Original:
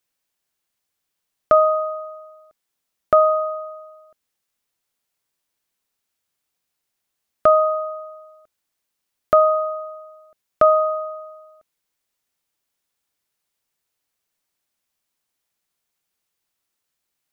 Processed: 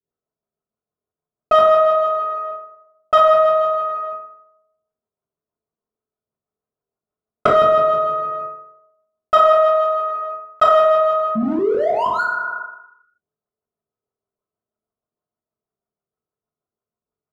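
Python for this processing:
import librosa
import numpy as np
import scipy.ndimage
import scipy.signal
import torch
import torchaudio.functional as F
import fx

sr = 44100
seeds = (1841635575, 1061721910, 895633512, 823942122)

y = fx.env_lowpass(x, sr, base_hz=710.0, full_db=-13.5)
y = fx.peak_eq(y, sr, hz=1300.0, db=6.5, octaves=0.39)
y = fx.spec_paint(y, sr, seeds[0], shape='rise', start_s=11.35, length_s=0.87, low_hz=210.0, high_hz=1500.0, level_db=-26.0)
y = fx.filter_lfo_lowpass(y, sr, shape='saw_up', hz=6.3, low_hz=290.0, high_hz=1800.0, q=1.3)
y = fx.power_curve(y, sr, exponent=1.4)
y = fx.rev_fdn(y, sr, rt60_s=0.84, lf_ratio=0.85, hf_ratio=0.5, size_ms=14.0, drr_db=-4.5)
y = fx.env_flatten(y, sr, amount_pct=70)
y = y * 10.0 ** (-9.5 / 20.0)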